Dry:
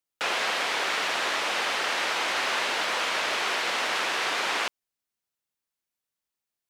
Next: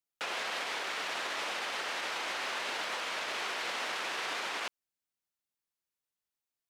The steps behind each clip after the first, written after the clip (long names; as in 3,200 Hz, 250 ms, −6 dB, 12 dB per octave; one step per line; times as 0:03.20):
brickwall limiter −22 dBFS, peak gain reduction 7.5 dB
level −5 dB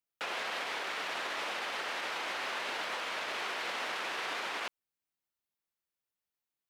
parametric band 7,200 Hz −4.5 dB 1.6 octaves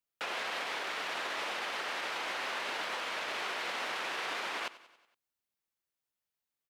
repeating echo 93 ms, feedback 57%, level −18 dB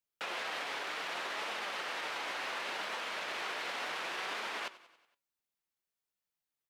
flanger 0.67 Hz, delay 4.3 ms, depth 3 ms, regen +80%
level +2.5 dB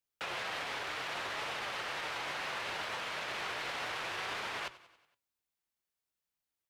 sub-octave generator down 2 octaves, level −3 dB